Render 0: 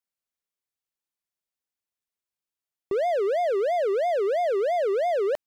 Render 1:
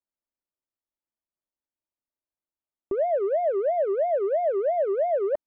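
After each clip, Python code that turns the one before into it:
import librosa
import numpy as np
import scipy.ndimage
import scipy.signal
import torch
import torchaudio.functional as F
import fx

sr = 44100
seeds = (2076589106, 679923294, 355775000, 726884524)

y = scipy.signal.sosfilt(scipy.signal.butter(2, 1000.0, 'lowpass', fs=sr, output='sos'), x)
y = y + 0.43 * np.pad(y, (int(3.3 * sr / 1000.0), 0))[:len(y)]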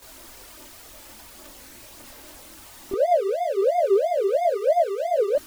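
y = x + 0.5 * 10.0 ** (-35.5 / 20.0) * np.sign(x)
y = fx.chorus_voices(y, sr, voices=4, hz=0.6, base_ms=24, depth_ms=2.2, mix_pct=70)
y = y * 10.0 ** (4.5 / 20.0)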